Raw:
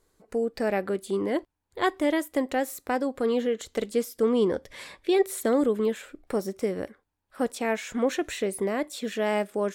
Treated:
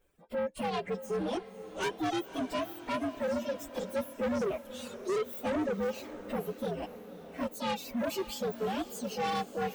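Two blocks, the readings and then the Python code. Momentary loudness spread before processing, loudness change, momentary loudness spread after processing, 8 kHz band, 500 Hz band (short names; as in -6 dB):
8 LU, -7.0 dB, 7 LU, -7.5 dB, -8.0 dB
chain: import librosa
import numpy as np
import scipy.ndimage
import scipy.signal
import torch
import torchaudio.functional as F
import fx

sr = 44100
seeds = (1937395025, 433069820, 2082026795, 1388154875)

p1 = fx.partial_stretch(x, sr, pct=124)
p2 = fx.dereverb_blind(p1, sr, rt60_s=1.6)
p3 = 10.0 ** (-29.5 / 20.0) * np.tanh(p2 / 10.0 ** (-29.5 / 20.0))
p4 = p3 + fx.echo_diffused(p3, sr, ms=559, feedback_pct=53, wet_db=-13, dry=0)
y = p4 * librosa.db_to_amplitude(1.5)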